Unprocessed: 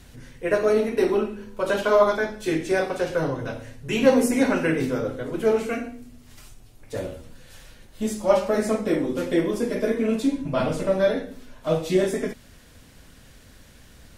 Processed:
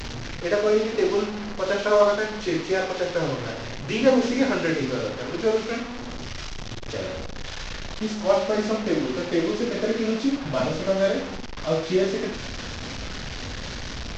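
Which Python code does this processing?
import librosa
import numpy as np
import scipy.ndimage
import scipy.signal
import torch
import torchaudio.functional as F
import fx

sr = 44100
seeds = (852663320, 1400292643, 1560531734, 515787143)

y = fx.delta_mod(x, sr, bps=32000, step_db=-25.5)
y = fx.room_flutter(y, sr, wall_m=8.9, rt60_s=0.32)
y = F.gain(torch.from_numpy(y), -1.5).numpy()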